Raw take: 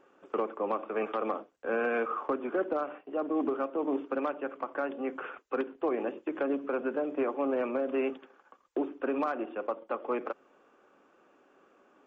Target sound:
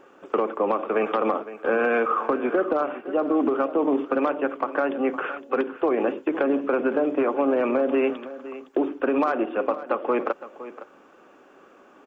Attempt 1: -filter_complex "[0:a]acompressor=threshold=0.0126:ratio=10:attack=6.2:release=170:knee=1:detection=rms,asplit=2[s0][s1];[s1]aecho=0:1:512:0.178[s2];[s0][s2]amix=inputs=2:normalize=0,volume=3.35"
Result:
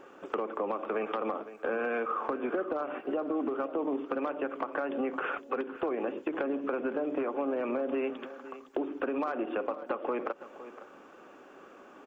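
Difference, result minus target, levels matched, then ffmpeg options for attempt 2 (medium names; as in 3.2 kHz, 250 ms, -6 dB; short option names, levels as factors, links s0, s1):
compression: peak gain reduction +10 dB
-filter_complex "[0:a]acompressor=threshold=0.0447:ratio=10:attack=6.2:release=170:knee=1:detection=rms,asplit=2[s0][s1];[s1]aecho=0:1:512:0.178[s2];[s0][s2]amix=inputs=2:normalize=0,volume=3.35"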